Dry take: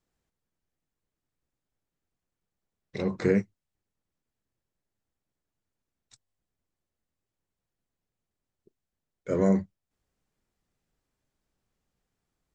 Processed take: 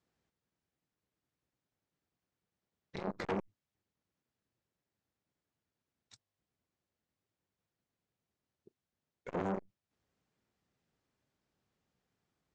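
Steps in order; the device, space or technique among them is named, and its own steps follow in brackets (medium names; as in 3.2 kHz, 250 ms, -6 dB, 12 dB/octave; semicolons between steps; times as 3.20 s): valve radio (band-pass 83–6000 Hz; valve stage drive 28 dB, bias 0.55; transformer saturation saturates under 700 Hz); trim +2.5 dB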